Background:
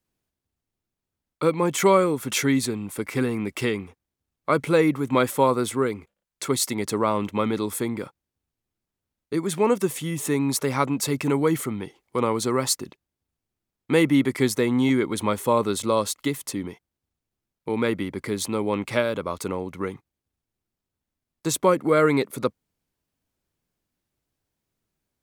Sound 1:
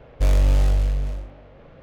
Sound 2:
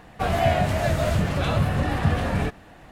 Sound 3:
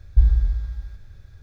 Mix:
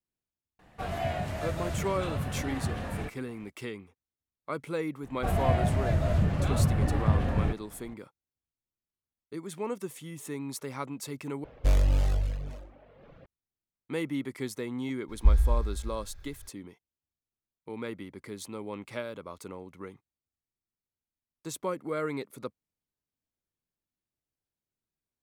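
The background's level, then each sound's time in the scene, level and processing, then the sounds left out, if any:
background −13.5 dB
0:00.59: mix in 2 −11 dB
0:05.03: mix in 2 −8.5 dB + spectral tilt −2 dB per octave
0:11.44: overwrite with 1 −4 dB + reverb reduction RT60 0.85 s
0:15.08: mix in 3 −1.5 dB, fades 0.02 s + parametric band 120 Hz −11 dB 1.8 octaves

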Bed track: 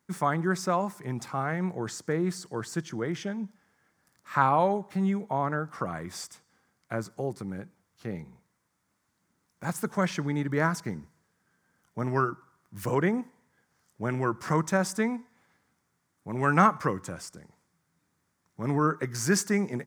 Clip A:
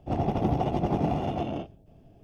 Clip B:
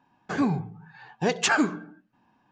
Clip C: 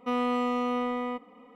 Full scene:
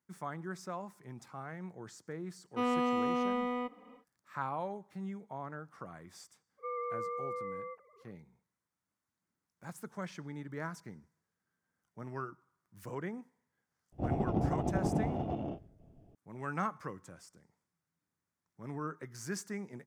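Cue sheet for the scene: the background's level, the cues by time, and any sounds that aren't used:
bed track −14.5 dB
0:02.50: mix in C −3.5 dB, fades 0.10 s
0:06.57: mix in C −10.5 dB, fades 0.02 s + three sine waves on the formant tracks
0:13.92: mix in A −11 dB + tilt shelving filter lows +6 dB, about 1,400 Hz
not used: B

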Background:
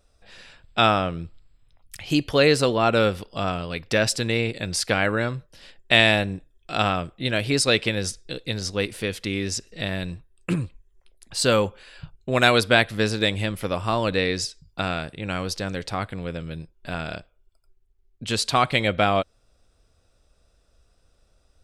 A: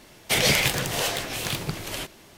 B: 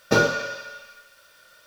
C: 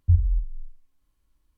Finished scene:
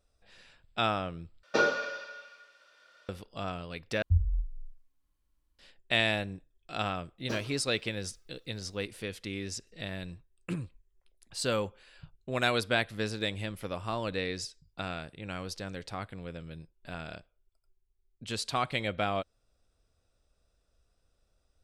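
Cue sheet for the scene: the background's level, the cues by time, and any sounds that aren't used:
background −10.5 dB
0:01.43: overwrite with B −6 dB + band-pass filter 310–4,800 Hz
0:04.02: overwrite with C −7 dB
0:07.18: mix in B −16 dB + harmonic-percussive split with one part muted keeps percussive
not used: A

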